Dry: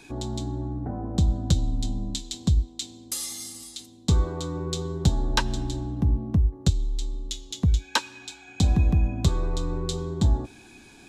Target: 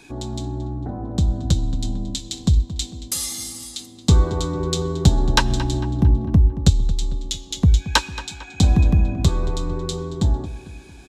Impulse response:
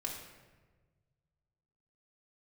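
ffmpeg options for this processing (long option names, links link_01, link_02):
-filter_complex "[0:a]dynaudnorm=framelen=390:gausssize=13:maxgain=6dB,asplit=2[link_01][link_02];[link_02]adelay=225,lowpass=frequency=4000:poles=1,volume=-14dB,asplit=2[link_03][link_04];[link_04]adelay=225,lowpass=frequency=4000:poles=1,volume=0.48,asplit=2[link_05][link_06];[link_06]adelay=225,lowpass=frequency=4000:poles=1,volume=0.48,asplit=2[link_07][link_08];[link_08]adelay=225,lowpass=frequency=4000:poles=1,volume=0.48,asplit=2[link_09][link_10];[link_10]adelay=225,lowpass=frequency=4000:poles=1,volume=0.48[link_11];[link_03][link_05][link_07][link_09][link_11]amix=inputs=5:normalize=0[link_12];[link_01][link_12]amix=inputs=2:normalize=0,volume=2dB"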